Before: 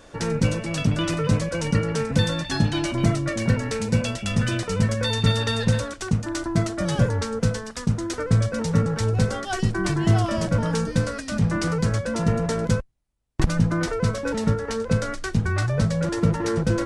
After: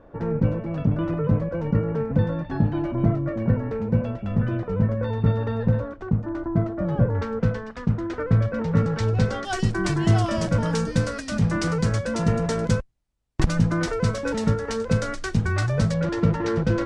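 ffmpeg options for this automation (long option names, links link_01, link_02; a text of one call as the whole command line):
ffmpeg -i in.wav -af "asetnsamples=nb_out_samples=441:pad=0,asendcmd='7.15 lowpass f 2100;8.77 lowpass f 4600;9.45 lowpass f 9000;15.94 lowpass f 4100',lowpass=1000" out.wav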